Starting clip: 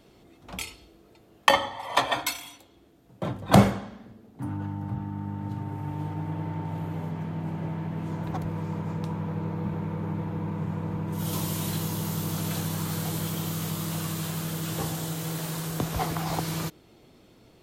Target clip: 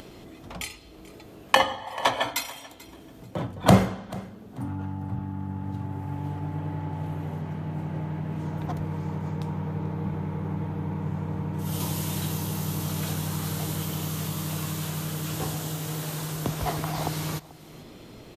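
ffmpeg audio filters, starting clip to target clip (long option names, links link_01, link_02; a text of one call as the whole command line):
ffmpeg -i in.wav -af "acompressor=mode=upward:threshold=-35dB:ratio=2.5,asetrate=42336,aresample=44100,aecho=1:1:438|876:0.1|0.023" out.wav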